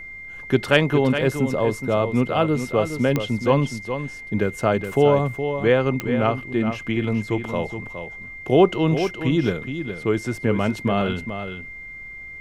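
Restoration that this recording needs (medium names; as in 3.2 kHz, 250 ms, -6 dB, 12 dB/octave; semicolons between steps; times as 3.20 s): de-click; band-stop 2.1 kHz, Q 30; noise print and reduce 29 dB; inverse comb 417 ms -9 dB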